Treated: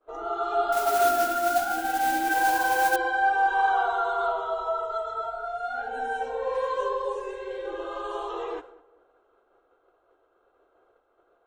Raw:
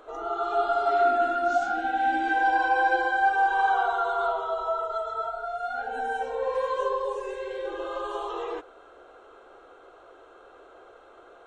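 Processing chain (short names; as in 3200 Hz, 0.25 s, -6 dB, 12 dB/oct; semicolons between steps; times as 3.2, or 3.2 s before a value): expander -41 dBFS; de-hum 263.9 Hz, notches 29; 0.72–2.96 modulation noise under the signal 13 dB; darkening echo 0.201 s, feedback 32%, low-pass 2500 Hz, level -19 dB; mismatched tape noise reduction decoder only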